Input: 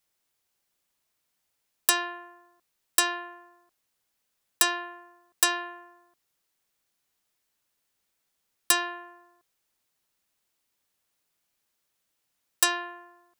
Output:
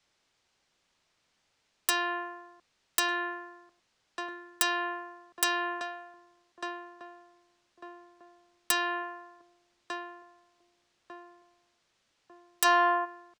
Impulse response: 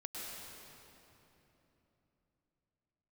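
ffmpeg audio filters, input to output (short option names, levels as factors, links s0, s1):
-filter_complex "[0:a]asplit=2[s0][s1];[s1]adelay=1198,lowpass=f=820:p=1,volume=0.211,asplit=2[s2][s3];[s3]adelay=1198,lowpass=f=820:p=1,volume=0.51,asplit=2[s4][s5];[s5]adelay=1198,lowpass=f=820:p=1,volume=0.51,asplit=2[s6][s7];[s7]adelay=1198,lowpass=f=820:p=1,volume=0.51,asplit=2[s8][s9];[s9]adelay=1198,lowpass=f=820:p=1,volume=0.51[s10];[s0][s2][s4][s6][s8][s10]amix=inputs=6:normalize=0,acrossover=split=130|460|6900[s11][s12][s13][s14];[s14]aeval=exprs='val(0)*gte(abs(val(0)),0.0891)':c=same[s15];[s11][s12][s13][s15]amix=inputs=4:normalize=0,acompressor=threshold=0.0282:ratio=4,asplit=3[s16][s17][s18];[s16]afade=t=out:st=12.64:d=0.02[s19];[s17]equalizer=f=780:t=o:w=2.3:g=12.5,afade=t=in:st=12.64:d=0.02,afade=t=out:st=13.04:d=0.02[s20];[s18]afade=t=in:st=13.04:d=0.02[s21];[s19][s20][s21]amix=inputs=3:normalize=0,asoftclip=type=tanh:threshold=0.0668,volume=2.66"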